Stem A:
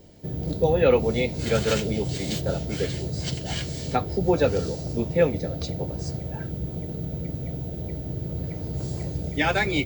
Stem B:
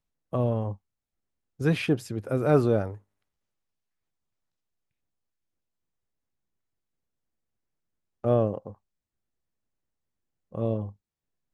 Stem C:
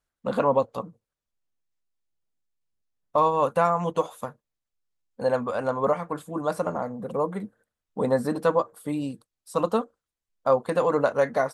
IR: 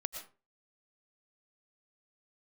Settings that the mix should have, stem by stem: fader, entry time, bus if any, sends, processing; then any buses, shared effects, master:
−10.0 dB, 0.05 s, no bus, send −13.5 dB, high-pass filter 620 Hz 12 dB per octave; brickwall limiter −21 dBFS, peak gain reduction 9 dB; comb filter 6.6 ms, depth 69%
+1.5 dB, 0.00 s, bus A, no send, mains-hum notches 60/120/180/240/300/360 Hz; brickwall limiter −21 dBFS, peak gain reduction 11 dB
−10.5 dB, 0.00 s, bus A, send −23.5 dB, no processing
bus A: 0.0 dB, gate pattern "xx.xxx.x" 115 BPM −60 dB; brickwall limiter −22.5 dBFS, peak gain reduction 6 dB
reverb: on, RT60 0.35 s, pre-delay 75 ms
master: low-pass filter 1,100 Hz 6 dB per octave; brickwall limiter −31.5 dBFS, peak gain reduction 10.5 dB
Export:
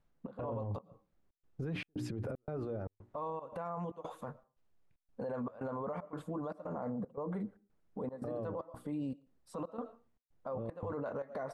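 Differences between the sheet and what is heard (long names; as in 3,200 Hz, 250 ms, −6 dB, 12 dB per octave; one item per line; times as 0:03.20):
stem A: muted
stem B +1.5 dB → +10.0 dB
stem C −10.5 dB → +0.5 dB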